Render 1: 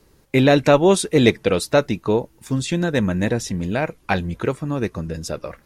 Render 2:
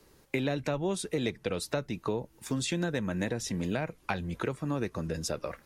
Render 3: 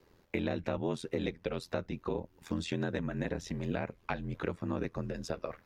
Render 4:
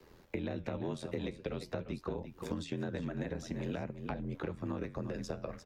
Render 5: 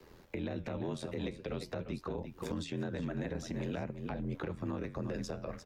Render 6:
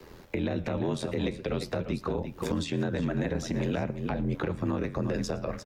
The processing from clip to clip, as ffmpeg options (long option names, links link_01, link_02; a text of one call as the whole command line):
ffmpeg -i in.wav -filter_complex "[0:a]lowshelf=frequency=220:gain=-6,acrossover=split=190[link_01][link_02];[link_01]alimiter=level_in=6.5dB:limit=-24dB:level=0:latency=1,volume=-6.5dB[link_03];[link_02]acompressor=threshold=-27dB:ratio=12[link_04];[link_03][link_04]amix=inputs=2:normalize=0,volume=-2dB" out.wav
ffmpeg -i in.wav -af "equalizer=frequency=10000:width_type=o:width=1.4:gain=-14.5,aeval=exprs='val(0)*sin(2*PI*42*n/s)':channel_layout=same" out.wav
ffmpeg -i in.wav -filter_complex "[0:a]aecho=1:1:345:0.237,flanger=delay=4.6:depth=7.4:regen=-81:speed=0.48:shape=sinusoidal,acrossover=split=210|720[link_01][link_02][link_03];[link_01]acompressor=threshold=-51dB:ratio=4[link_04];[link_02]acompressor=threshold=-49dB:ratio=4[link_05];[link_03]acompressor=threshold=-58dB:ratio=4[link_06];[link_04][link_05][link_06]amix=inputs=3:normalize=0,volume=9.5dB" out.wav
ffmpeg -i in.wav -af "alimiter=level_in=6dB:limit=-24dB:level=0:latency=1:release=25,volume=-6dB,volume=2dB" out.wav
ffmpeg -i in.wav -af "aecho=1:1:114:0.0708,volume=8dB" out.wav